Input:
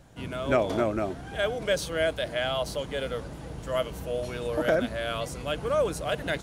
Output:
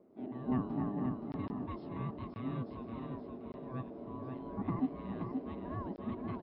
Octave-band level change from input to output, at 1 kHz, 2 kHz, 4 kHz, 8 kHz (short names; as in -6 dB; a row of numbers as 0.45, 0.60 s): -11.0 dB, -24.5 dB, under -25 dB, under -40 dB